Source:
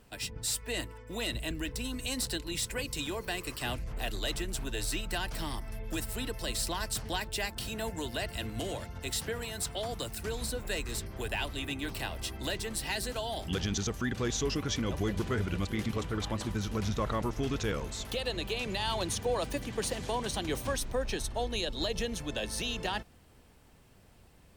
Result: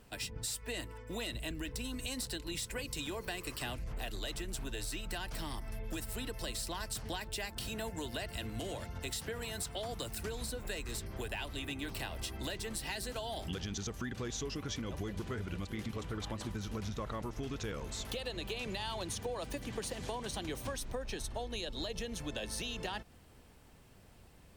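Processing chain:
downward compressor, threshold −36 dBFS, peak gain reduction 9.5 dB

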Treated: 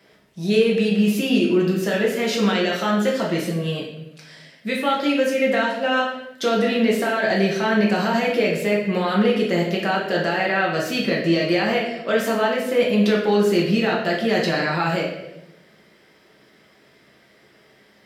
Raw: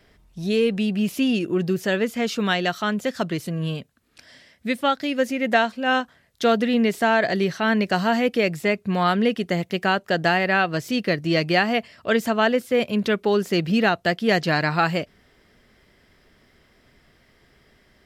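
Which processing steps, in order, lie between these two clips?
high-pass filter 180 Hz
brickwall limiter −14.5 dBFS, peak gain reduction 10 dB
convolution reverb RT60 0.90 s, pre-delay 5 ms, DRR −3.5 dB

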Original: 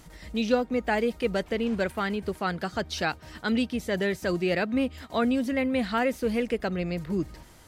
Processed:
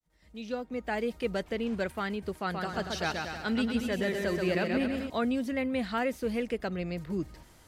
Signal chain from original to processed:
fade in at the beginning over 1.17 s
0:02.37–0:05.10: bouncing-ball delay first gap 130 ms, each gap 0.8×, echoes 5
level −4.5 dB

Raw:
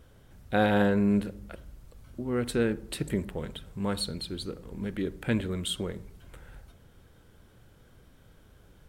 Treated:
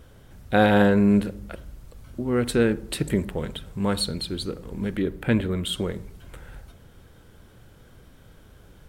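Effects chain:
0:04.99–0:05.73: parametric band 6,900 Hz −7 dB 1.6 octaves
level +6 dB

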